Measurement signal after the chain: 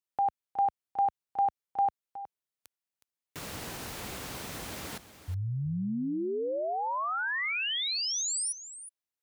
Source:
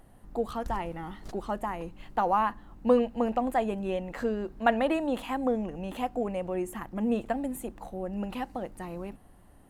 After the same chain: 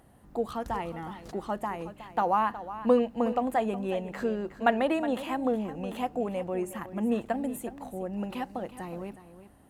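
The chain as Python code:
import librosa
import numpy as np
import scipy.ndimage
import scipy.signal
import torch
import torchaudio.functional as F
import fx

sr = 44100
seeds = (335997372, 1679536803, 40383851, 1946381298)

p1 = scipy.signal.sosfilt(scipy.signal.butter(2, 65.0, 'highpass', fs=sr, output='sos'), x)
y = p1 + fx.echo_single(p1, sr, ms=366, db=-13.5, dry=0)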